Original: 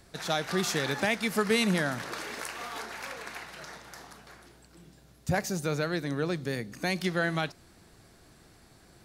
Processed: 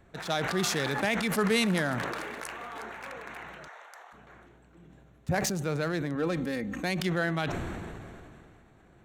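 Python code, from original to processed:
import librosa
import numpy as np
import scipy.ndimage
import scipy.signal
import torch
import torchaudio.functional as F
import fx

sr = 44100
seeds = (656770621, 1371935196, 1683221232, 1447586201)

y = fx.wiener(x, sr, points=9)
y = fx.highpass(y, sr, hz=570.0, slope=24, at=(3.67, 4.12), fade=0.02)
y = fx.comb(y, sr, ms=3.8, depth=0.68, at=(6.15, 6.83))
y = fx.sustainer(y, sr, db_per_s=23.0)
y = F.gain(torch.from_numpy(y), -1.0).numpy()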